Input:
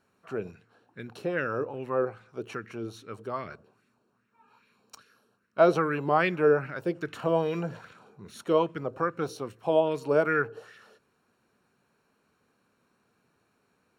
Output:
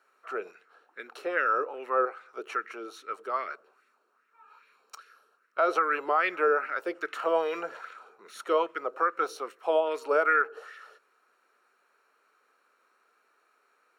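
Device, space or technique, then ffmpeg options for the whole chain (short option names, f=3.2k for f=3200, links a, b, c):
laptop speaker: -af "highpass=f=390:w=0.5412,highpass=f=390:w=1.3066,equalizer=f=1.3k:t=o:w=0.28:g=11,equalizer=f=2k:t=o:w=0.52:g=6,alimiter=limit=-14.5dB:level=0:latency=1:release=156"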